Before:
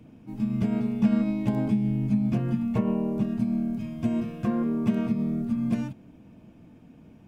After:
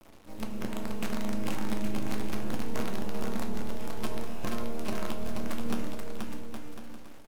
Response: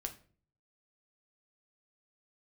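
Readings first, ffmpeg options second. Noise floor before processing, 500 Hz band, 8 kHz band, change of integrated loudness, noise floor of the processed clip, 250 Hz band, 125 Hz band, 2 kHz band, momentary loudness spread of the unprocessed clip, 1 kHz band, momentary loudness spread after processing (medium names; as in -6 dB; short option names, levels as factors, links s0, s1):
-52 dBFS, -2.5 dB, no reading, -9.5 dB, -45 dBFS, -11.0 dB, -11.0 dB, +4.0 dB, 5 LU, +1.5 dB, 8 LU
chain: -filter_complex "[0:a]bass=f=250:g=-14,treble=f=4000:g=0,acompressor=threshold=0.02:ratio=10,acrusher=bits=6:dc=4:mix=0:aa=0.000001,aecho=1:1:480|816|1051|1216|1331:0.631|0.398|0.251|0.158|0.1[s0];[1:a]atrim=start_sample=2205,asetrate=30429,aresample=44100[s1];[s0][s1]afir=irnorm=-1:irlink=0,volume=1.33"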